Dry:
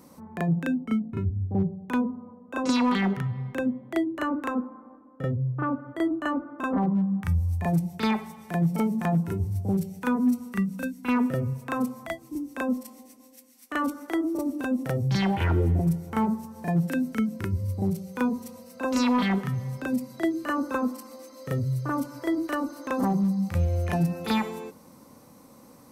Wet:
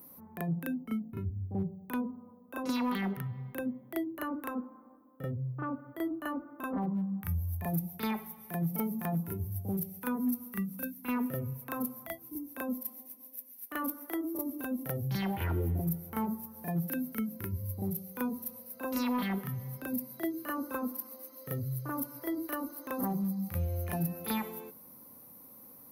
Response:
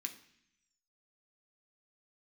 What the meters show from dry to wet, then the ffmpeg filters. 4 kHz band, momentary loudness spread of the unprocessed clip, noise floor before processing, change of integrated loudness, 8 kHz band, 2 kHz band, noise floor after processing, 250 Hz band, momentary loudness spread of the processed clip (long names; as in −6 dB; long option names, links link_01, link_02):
−9.5 dB, 8 LU, −52 dBFS, −8.0 dB, −2.0 dB, −8.5 dB, −54 dBFS, −8.5 dB, 9 LU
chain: -af "highshelf=frequency=8700:gain=-7,aexciter=amount=14.3:drive=8.7:freq=11000,volume=-8.5dB"